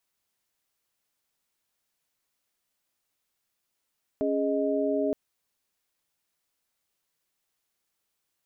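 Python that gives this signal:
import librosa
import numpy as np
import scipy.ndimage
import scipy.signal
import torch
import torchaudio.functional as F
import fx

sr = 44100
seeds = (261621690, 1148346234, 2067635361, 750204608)

y = fx.chord(sr, length_s=0.92, notes=(61, 68, 75), wave='sine', level_db=-28.0)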